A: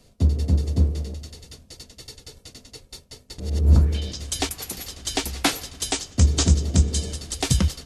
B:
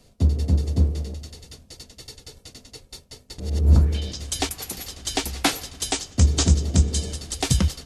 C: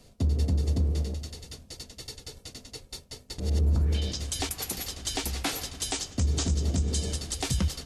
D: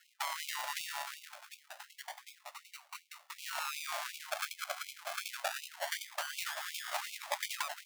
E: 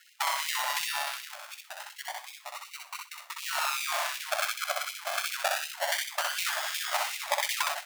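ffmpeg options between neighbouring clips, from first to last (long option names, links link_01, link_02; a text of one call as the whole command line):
ffmpeg -i in.wav -af "equalizer=frequency=790:width=6.3:gain=2" out.wav
ffmpeg -i in.wav -af "alimiter=limit=-18dB:level=0:latency=1:release=95" out.wav
ffmpeg -i in.wav -af "acrusher=samples=37:mix=1:aa=0.000001:lfo=1:lforange=22.2:lforate=0.26,afftfilt=real='re*gte(b*sr/1024,550*pow(2200/550,0.5+0.5*sin(2*PI*2.7*pts/sr)))':imag='im*gte(b*sr/1024,550*pow(2200/550,0.5+0.5*sin(2*PI*2.7*pts/sr)))':win_size=1024:overlap=0.75,volume=2dB" out.wav
ffmpeg -i in.wav -af "aecho=1:1:63|126|189:0.708|0.12|0.0205,volume=7dB" out.wav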